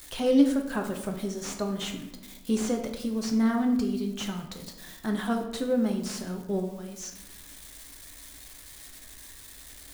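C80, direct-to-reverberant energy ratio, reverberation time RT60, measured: 10.0 dB, 2.5 dB, 0.95 s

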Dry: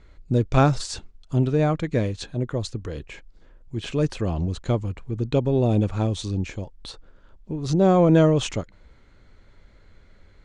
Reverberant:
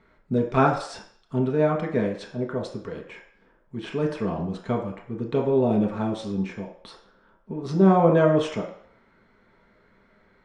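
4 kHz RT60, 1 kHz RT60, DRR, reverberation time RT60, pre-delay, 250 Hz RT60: 0.60 s, 0.60 s, -0.5 dB, 0.60 s, 3 ms, 0.50 s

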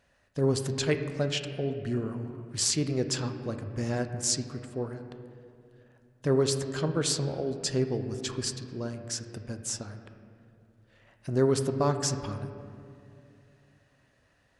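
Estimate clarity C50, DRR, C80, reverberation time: 8.5 dB, 7.0 dB, 9.5 dB, 2.5 s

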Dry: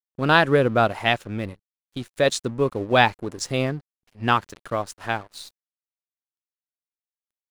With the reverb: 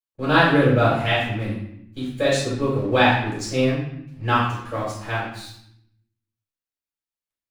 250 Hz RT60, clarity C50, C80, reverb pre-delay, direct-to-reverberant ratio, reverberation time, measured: 1.1 s, 2.0 dB, 5.5 dB, 3 ms, -9.5 dB, 0.75 s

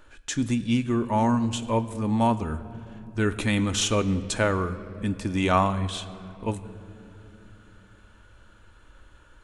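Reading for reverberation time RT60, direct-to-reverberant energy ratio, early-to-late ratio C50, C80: 3.0 s, 9.5 dB, 14.5 dB, 15.0 dB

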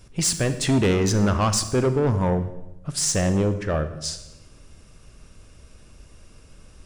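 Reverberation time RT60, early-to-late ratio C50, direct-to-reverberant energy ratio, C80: 0.90 s, 11.0 dB, 10.0 dB, 13.5 dB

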